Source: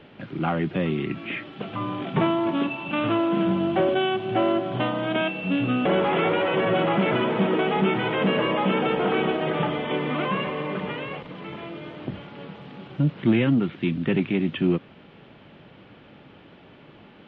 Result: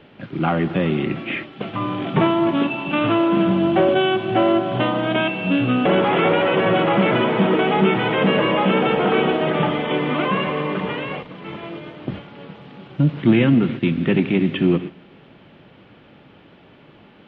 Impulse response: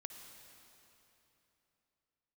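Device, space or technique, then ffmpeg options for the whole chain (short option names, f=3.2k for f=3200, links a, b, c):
keyed gated reverb: -filter_complex "[0:a]asplit=3[a][b][c];[1:a]atrim=start_sample=2205[d];[b][d]afir=irnorm=-1:irlink=0[e];[c]apad=whole_len=761990[f];[e][f]sidechaingate=range=-17dB:threshold=-35dB:ratio=16:detection=peak,volume=3dB[g];[a][g]amix=inputs=2:normalize=0"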